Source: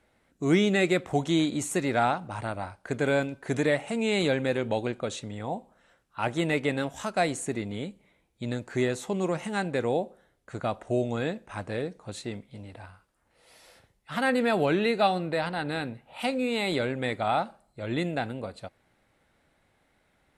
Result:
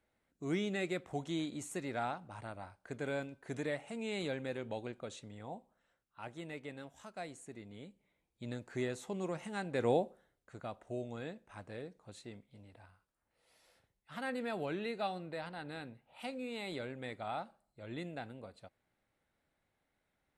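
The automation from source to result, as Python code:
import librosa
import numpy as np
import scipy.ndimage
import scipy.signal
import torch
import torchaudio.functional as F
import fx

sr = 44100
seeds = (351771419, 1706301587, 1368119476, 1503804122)

y = fx.gain(x, sr, db=fx.line((5.54, -13.0), (6.41, -19.0), (7.48, -19.0), (8.5, -10.5), (9.67, -10.5), (9.9, -2.5), (10.56, -14.0)))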